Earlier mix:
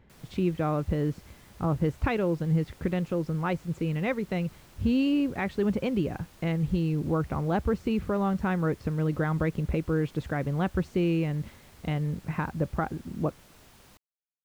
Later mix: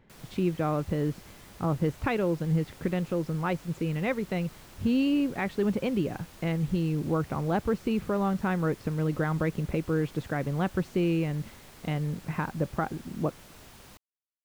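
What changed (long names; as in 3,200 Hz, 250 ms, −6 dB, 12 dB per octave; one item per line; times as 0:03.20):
speech: add parametric band 64 Hz −11 dB 0.89 octaves
background +4.5 dB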